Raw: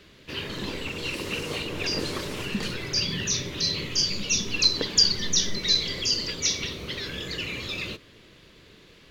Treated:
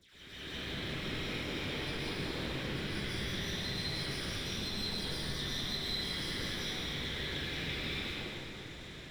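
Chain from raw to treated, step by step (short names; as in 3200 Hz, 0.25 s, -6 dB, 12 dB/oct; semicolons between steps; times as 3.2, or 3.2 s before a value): minimum comb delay 0.54 ms; resonant high shelf 4900 Hz -11 dB, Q 1.5; sample leveller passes 2; reverse; compressor 8:1, threshold -42 dBFS, peak gain reduction 26 dB; reverse; AM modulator 160 Hz, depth 45%; dispersion lows, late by 0.143 s, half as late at 1700 Hz; reverse echo 0.199 s -6.5 dB; plate-style reverb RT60 2.5 s, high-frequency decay 0.85×, pre-delay 0.105 s, DRR -7.5 dB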